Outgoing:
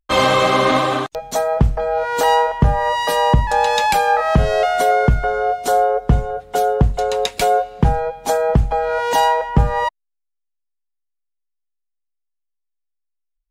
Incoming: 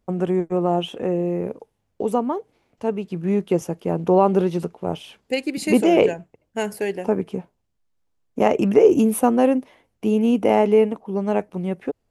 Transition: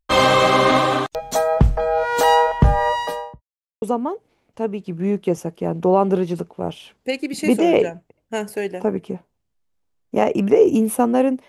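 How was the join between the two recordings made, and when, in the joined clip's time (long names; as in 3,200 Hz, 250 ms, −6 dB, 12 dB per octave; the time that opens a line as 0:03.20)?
outgoing
0:02.79–0:03.42: fade out and dull
0:03.42–0:03.82: silence
0:03.82: continue with incoming from 0:02.06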